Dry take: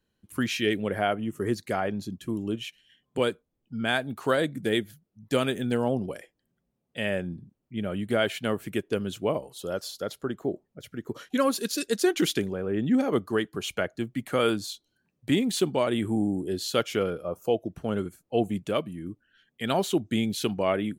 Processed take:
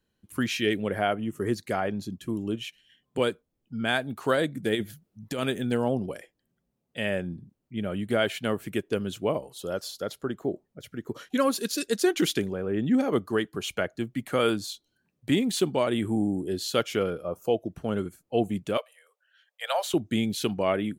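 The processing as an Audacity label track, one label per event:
4.750000	5.430000	compressor with a negative ratio -29 dBFS
18.770000	19.940000	steep high-pass 490 Hz 96 dB/octave

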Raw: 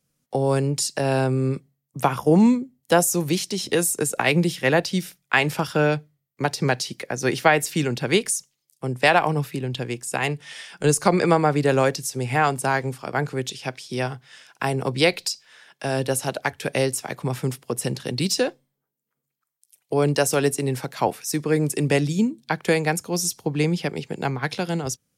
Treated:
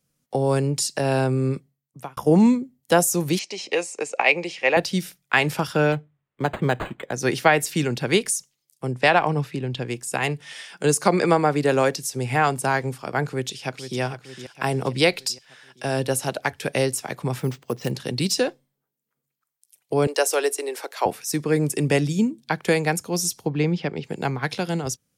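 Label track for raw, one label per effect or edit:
1.520000	2.170000	fade out
3.390000	4.770000	cabinet simulation 490–6400 Hz, peaks and dips at 540 Hz +4 dB, 800 Hz +4 dB, 1.5 kHz -7 dB, 2.4 kHz +9 dB, 3.6 kHz -8 dB, 5.4 kHz -4 dB
5.920000	7.130000	decimation joined by straight lines rate divided by 8×
8.910000	9.880000	distance through air 53 m
10.530000	12.130000	high-pass 150 Hz
13.260000	14.000000	echo throw 460 ms, feedback 55%, level -11 dB
17.400000	17.910000	careless resampling rate divided by 4×, down filtered, up hold
20.070000	21.060000	steep high-pass 360 Hz
21.670000	22.420000	band-stop 4.1 kHz, Q 14
23.490000	24.040000	distance through air 150 m

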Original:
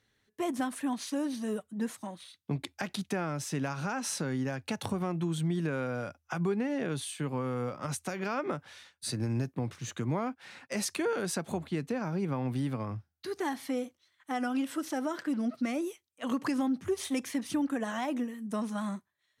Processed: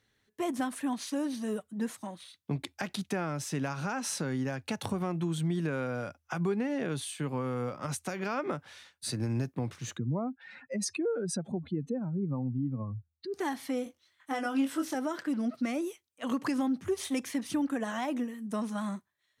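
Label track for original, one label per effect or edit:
9.970000	13.340000	spectral contrast enhancement exponent 2.1
13.840000	14.950000	doubling 22 ms -5 dB

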